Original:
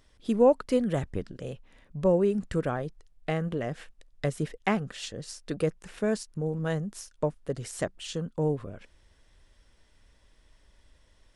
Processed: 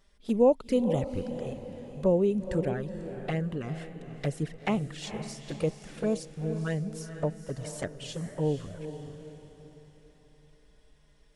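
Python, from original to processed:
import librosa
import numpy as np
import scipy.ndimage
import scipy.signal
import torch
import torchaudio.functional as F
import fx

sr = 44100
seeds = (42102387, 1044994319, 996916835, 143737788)

p1 = fx.env_flanger(x, sr, rest_ms=5.2, full_db=-23.0)
y = p1 + fx.echo_diffused(p1, sr, ms=473, feedback_pct=43, wet_db=-10.0, dry=0)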